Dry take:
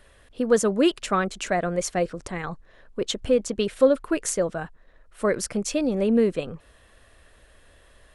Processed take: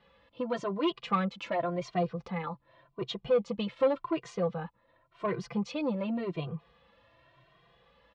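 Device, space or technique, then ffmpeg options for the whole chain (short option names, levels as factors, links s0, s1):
barber-pole flanger into a guitar amplifier: -filter_complex "[0:a]asplit=2[s0][s1];[s1]adelay=2,afreqshift=0.89[s2];[s0][s2]amix=inputs=2:normalize=1,asoftclip=type=tanh:threshold=0.119,highpass=94,equalizer=f=130:t=q:w=4:g=9,equalizer=f=350:t=q:w=4:g=-5,equalizer=f=1000:t=q:w=4:g=8,equalizer=f=1600:t=q:w=4:g=-8,lowpass=f=4000:w=0.5412,lowpass=f=4000:w=1.3066,aecho=1:1:5.9:0.53,volume=0.708"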